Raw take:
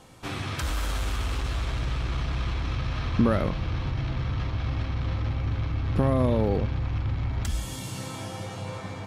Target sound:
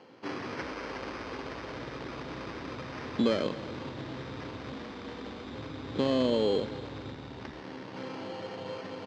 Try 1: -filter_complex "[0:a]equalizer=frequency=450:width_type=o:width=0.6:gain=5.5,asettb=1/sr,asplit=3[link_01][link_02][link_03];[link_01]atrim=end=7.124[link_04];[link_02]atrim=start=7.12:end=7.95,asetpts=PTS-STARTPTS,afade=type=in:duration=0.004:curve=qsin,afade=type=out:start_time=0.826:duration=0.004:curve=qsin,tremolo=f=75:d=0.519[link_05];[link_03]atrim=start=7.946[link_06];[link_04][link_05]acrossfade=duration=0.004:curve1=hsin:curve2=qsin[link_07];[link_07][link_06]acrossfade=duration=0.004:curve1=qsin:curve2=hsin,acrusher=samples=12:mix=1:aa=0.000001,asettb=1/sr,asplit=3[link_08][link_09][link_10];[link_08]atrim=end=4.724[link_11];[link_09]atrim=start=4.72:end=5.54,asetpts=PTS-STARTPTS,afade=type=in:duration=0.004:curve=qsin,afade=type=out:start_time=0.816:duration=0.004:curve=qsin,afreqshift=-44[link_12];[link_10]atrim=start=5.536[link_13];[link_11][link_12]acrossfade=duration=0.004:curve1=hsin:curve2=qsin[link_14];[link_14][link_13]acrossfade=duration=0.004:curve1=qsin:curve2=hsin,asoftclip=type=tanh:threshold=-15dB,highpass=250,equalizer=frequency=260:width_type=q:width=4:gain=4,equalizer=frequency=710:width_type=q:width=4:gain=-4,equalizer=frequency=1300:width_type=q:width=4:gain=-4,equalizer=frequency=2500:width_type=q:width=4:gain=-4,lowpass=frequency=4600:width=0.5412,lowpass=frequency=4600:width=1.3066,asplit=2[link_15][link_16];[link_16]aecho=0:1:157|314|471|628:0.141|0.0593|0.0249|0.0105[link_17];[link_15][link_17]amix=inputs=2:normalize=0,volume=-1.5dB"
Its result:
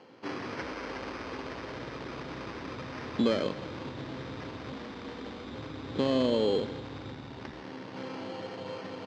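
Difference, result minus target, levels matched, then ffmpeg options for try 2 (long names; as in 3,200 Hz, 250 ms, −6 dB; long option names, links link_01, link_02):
echo 105 ms early
-filter_complex "[0:a]equalizer=frequency=450:width_type=o:width=0.6:gain=5.5,asettb=1/sr,asplit=3[link_01][link_02][link_03];[link_01]atrim=end=7.124[link_04];[link_02]atrim=start=7.12:end=7.95,asetpts=PTS-STARTPTS,afade=type=in:duration=0.004:curve=qsin,afade=type=out:start_time=0.826:duration=0.004:curve=qsin,tremolo=f=75:d=0.519[link_05];[link_03]atrim=start=7.946[link_06];[link_04][link_05]acrossfade=duration=0.004:curve1=hsin:curve2=qsin[link_07];[link_07][link_06]acrossfade=duration=0.004:curve1=qsin:curve2=hsin,acrusher=samples=12:mix=1:aa=0.000001,asettb=1/sr,asplit=3[link_08][link_09][link_10];[link_08]atrim=end=4.724[link_11];[link_09]atrim=start=4.72:end=5.54,asetpts=PTS-STARTPTS,afade=type=in:duration=0.004:curve=qsin,afade=type=out:start_time=0.816:duration=0.004:curve=qsin,afreqshift=-44[link_12];[link_10]atrim=start=5.536[link_13];[link_11][link_12]acrossfade=duration=0.004:curve1=hsin:curve2=qsin[link_14];[link_14][link_13]acrossfade=duration=0.004:curve1=qsin:curve2=hsin,asoftclip=type=tanh:threshold=-15dB,highpass=250,equalizer=frequency=260:width_type=q:width=4:gain=4,equalizer=frequency=710:width_type=q:width=4:gain=-4,equalizer=frequency=1300:width_type=q:width=4:gain=-4,equalizer=frequency=2500:width_type=q:width=4:gain=-4,lowpass=frequency=4600:width=0.5412,lowpass=frequency=4600:width=1.3066,asplit=2[link_15][link_16];[link_16]aecho=0:1:262|524|786|1048:0.141|0.0593|0.0249|0.0105[link_17];[link_15][link_17]amix=inputs=2:normalize=0,volume=-1.5dB"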